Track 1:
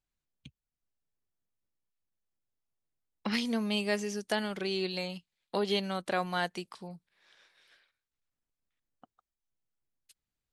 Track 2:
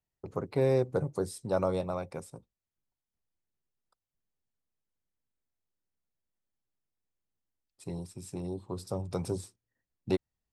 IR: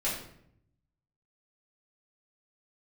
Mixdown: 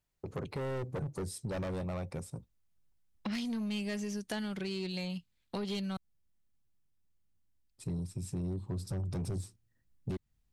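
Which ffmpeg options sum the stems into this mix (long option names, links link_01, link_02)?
-filter_complex "[0:a]volume=0.5dB,asplit=3[link_01][link_02][link_03];[link_01]atrim=end=5.97,asetpts=PTS-STARTPTS,afade=type=out:start_time=5.966:duration=0.004:curve=hsin[link_04];[link_02]atrim=start=5.97:end=8.53,asetpts=PTS-STARTPTS,volume=0[link_05];[link_03]atrim=start=8.53,asetpts=PTS-STARTPTS,afade=type=in:duration=0.004:curve=hsin[link_06];[link_04][link_05][link_06]concat=n=3:v=0:a=1[link_07];[1:a]volume=30dB,asoftclip=hard,volume=-30dB,volume=2dB[link_08];[link_07][link_08]amix=inputs=2:normalize=0,asubboost=boost=3.5:cutoff=230,asoftclip=type=tanh:threshold=-25.5dB,acompressor=threshold=-36dB:ratio=2.5"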